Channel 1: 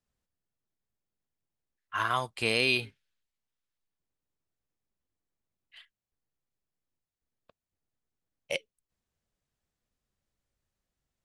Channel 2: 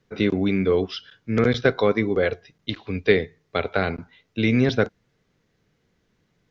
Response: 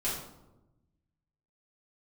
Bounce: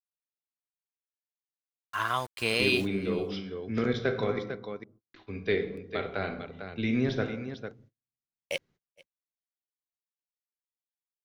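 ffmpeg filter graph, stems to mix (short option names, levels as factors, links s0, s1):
-filter_complex "[0:a]aeval=exprs='val(0)*gte(abs(val(0)),0.00841)':c=same,volume=0.944,asplit=2[s0][s1];[s1]volume=0.0631[s2];[1:a]adelay=2400,volume=0.251,asplit=3[s3][s4][s5];[s3]atrim=end=4.39,asetpts=PTS-STARTPTS,afade=t=out:st=4.386:d=0.004:c=hsin[s6];[s4]atrim=start=4.39:end=5.14,asetpts=PTS-STARTPTS,volume=0[s7];[s5]atrim=start=5.14,asetpts=PTS-STARTPTS,afade=t=in:d=0.004:c=hsin[s8];[s6][s7][s8]concat=n=3:v=0:a=1,asplit=3[s9][s10][s11];[s10]volume=0.355[s12];[s11]volume=0.447[s13];[2:a]atrim=start_sample=2205[s14];[s12][s14]afir=irnorm=-1:irlink=0[s15];[s2][s13]amix=inputs=2:normalize=0,aecho=0:1:450:1[s16];[s0][s9][s15][s16]amix=inputs=4:normalize=0,agate=range=0.0178:threshold=0.00158:ratio=16:detection=peak"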